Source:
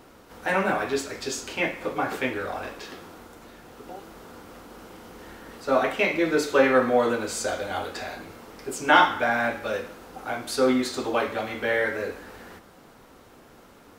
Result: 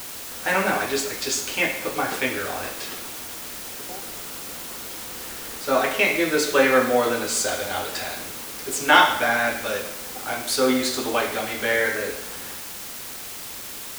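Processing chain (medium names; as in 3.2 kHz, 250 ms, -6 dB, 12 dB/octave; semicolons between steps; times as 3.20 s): treble shelf 2.1 kHz +8.5 dB; word length cut 6-bit, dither triangular; on a send: reverberation RT60 0.85 s, pre-delay 61 ms, DRR 11.5 dB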